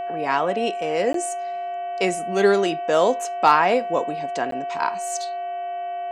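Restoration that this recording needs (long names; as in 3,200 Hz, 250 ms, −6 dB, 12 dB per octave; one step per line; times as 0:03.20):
clipped peaks rebuilt −4 dBFS
hum removal 378.8 Hz, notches 8
notch filter 700 Hz, Q 30
repair the gap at 0:01.13/0:04.51, 13 ms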